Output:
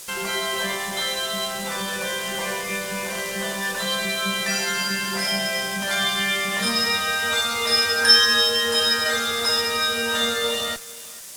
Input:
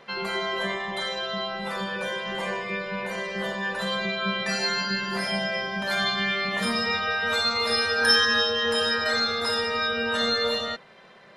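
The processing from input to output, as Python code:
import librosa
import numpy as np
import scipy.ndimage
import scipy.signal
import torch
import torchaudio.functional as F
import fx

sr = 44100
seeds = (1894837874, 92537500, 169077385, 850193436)

p1 = fx.schmitt(x, sr, flips_db=-36.5)
p2 = x + (p1 * 10.0 ** (-10.0 / 20.0))
p3 = fx.dmg_noise_colour(p2, sr, seeds[0], colour='blue', level_db=-37.0)
p4 = scipy.signal.sosfilt(scipy.signal.butter(2, 8800.0, 'lowpass', fs=sr, output='sos'), p3)
p5 = fx.high_shelf(p4, sr, hz=3700.0, db=12.0)
p6 = fx.notch(p5, sr, hz=4200.0, q=26.0)
p7 = p6 + fx.echo_single(p6, sr, ms=446, db=-18.5, dry=0)
p8 = np.sign(p7) * np.maximum(np.abs(p7) - 10.0 ** (-41.5 / 20.0), 0.0)
y = p8 * 10.0 ** (-1.0 / 20.0)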